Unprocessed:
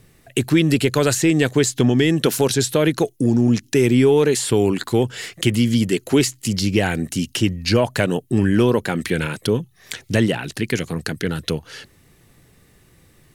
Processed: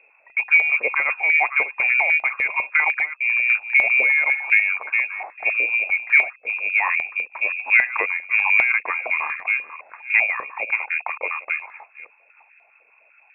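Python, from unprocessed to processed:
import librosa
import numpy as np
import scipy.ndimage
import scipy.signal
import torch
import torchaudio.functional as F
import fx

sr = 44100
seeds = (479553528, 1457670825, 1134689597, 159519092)

y = fx.reverse_delay(x, sr, ms=327, wet_db=-13.0)
y = fx.freq_invert(y, sr, carrier_hz=2600)
y = fx.filter_held_highpass(y, sr, hz=10.0, low_hz=490.0, high_hz=1700.0)
y = y * librosa.db_to_amplitude(-5.5)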